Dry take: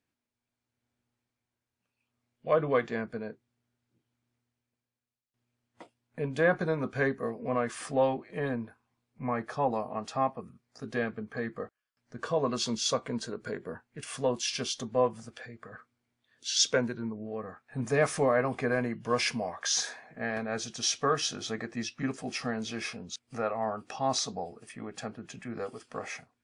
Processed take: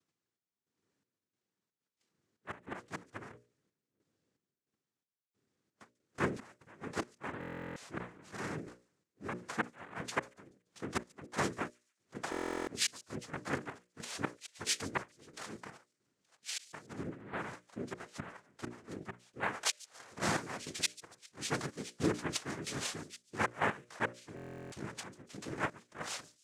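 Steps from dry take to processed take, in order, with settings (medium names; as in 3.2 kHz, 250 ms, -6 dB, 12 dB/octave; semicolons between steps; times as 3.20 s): inverted gate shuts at -20 dBFS, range -26 dB; peaking EQ 1 kHz -4 dB 0.49 oct; in parallel at -0.5 dB: level held to a coarse grid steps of 17 dB; on the sum: noise-vocoded speech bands 3; hum notches 60/120/180/240/300/360/420/480/540/600 Hz; square tremolo 1.5 Hz, depth 65%, duty 55%; on a send: feedback echo behind a high-pass 143 ms, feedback 38%, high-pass 4.5 kHz, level -17.5 dB; on the sum: buffer glitch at 7.39/12.30/24.35 s, samples 1024, times 15; trim -3 dB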